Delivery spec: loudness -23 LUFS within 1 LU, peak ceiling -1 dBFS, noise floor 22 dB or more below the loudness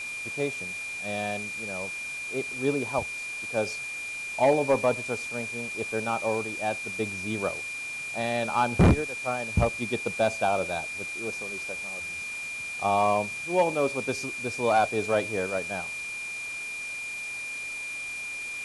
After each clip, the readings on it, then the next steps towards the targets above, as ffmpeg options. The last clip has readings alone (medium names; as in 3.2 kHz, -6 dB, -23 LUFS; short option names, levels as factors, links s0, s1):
steady tone 2.4 kHz; tone level -33 dBFS; noise floor -36 dBFS; noise floor target -51 dBFS; loudness -28.5 LUFS; peak level -12.0 dBFS; loudness target -23.0 LUFS
-> -af "bandreject=f=2400:w=30"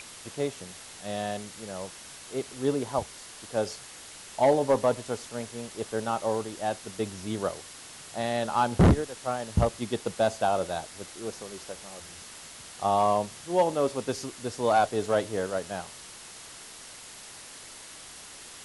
steady tone not found; noise floor -46 dBFS; noise floor target -51 dBFS
-> -af "afftdn=nr=6:nf=-46"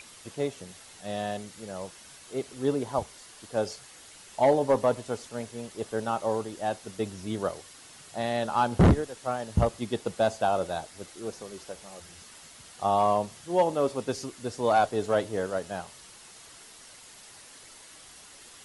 noise floor -50 dBFS; noise floor target -51 dBFS
-> -af "afftdn=nr=6:nf=-50"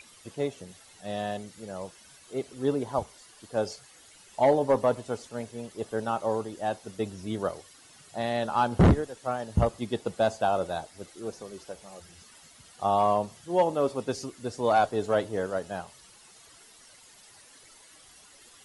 noise floor -55 dBFS; loudness -29.0 LUFS; peak level -13.0 dBFS; loudness target -23.0 LUFS
-> -af "volume=2"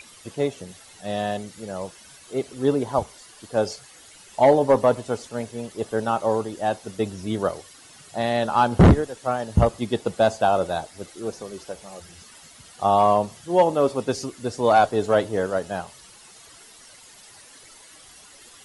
loudness -23.0 LUFS; peak level -7.0 dBFS; noise floor -49 dBFS